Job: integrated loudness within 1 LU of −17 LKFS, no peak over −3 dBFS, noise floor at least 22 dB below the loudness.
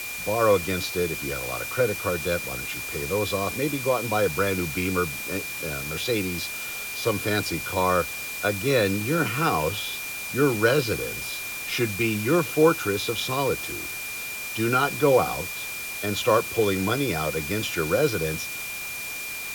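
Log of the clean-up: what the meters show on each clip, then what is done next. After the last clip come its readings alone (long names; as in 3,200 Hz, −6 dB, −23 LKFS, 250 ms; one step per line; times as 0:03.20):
interfering tone 2,400 Hz; level of the tone −33 dBFS; background noise floor −34 dBFS; target noise floor −47 dBFS; integrated loudness −25.0 LKFS; sample peak −6.5 dBFS; target loudness −17.0 LKFS
→ notch filter 2,400 Hz, Q 30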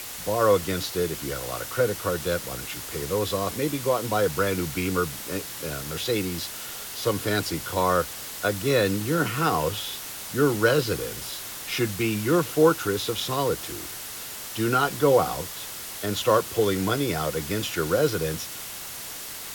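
interfering tone none found; background noise floor −37 dBFS; target noise floor −48 dBFS
→ broadband denoise 11 dB, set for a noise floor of −37 dBFS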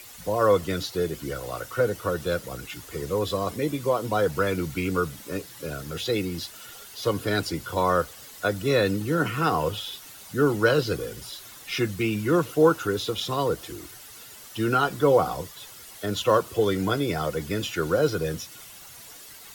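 background noise floor −45 dBFS; target noise floor −48 dBFS
→ broadband denoise 6 dB, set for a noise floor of −45 dBFS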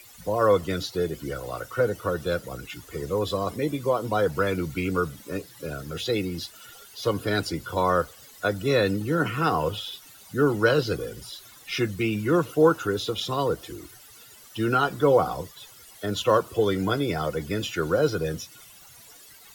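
background noise floor −50 dBFS; integrated loudness −26.0 LKFS; sample peak −7.0 dBFS; target loudness −17.0 LKFS
→ level +9 dB
brickwall limiter −3 dBFS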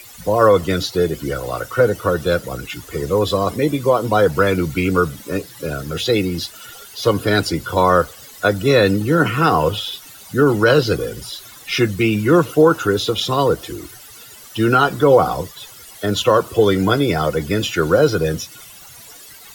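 integrated loudness −17.5 LKFS; sample peak −3.0 dBFS; background noise floor −41 dBFS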